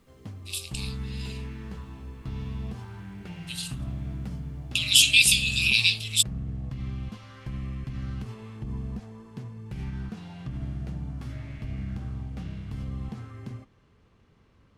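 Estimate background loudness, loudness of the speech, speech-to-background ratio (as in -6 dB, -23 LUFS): -37.0 LUFS, -19.5 LUFS, 17.5 dB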